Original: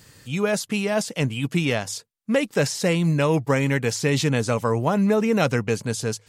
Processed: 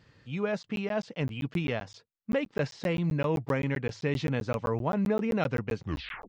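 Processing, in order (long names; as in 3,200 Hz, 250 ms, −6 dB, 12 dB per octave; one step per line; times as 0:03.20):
turntable brake at the end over 0.53 s
Gaussian smoothing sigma 2.1 samples
regular buffer underruns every 0.13 s, samples 512, zero, from 0:00.63
level −7.5 dB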